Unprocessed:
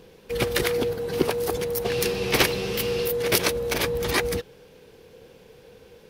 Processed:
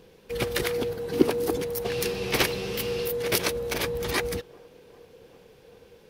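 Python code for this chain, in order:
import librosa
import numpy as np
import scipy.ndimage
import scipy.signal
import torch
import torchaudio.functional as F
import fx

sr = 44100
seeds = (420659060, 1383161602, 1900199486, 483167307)

y = fx.peak_eq(x, sr, hz=290.0, db=11.0, octaves=0.77, at=(1.12, 1.62))
y = fx.echo_wet_bandpass(y, sr, ms=394, feedback_pct=72, hz=520.0, wet_db=-24.0)
y = F.gain(torch.from_numpy(y), -3.5).numpy()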